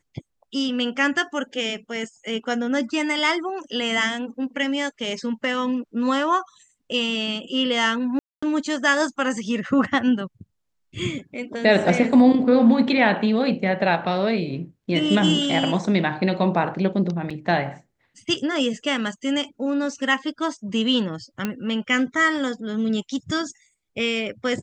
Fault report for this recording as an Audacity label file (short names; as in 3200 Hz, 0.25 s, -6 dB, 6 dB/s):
8.190000	8.430000	gap 0.235 s
17.300000	17.310000	gap 5.2 ms
21.450000	21.450000	pop -11 dBFS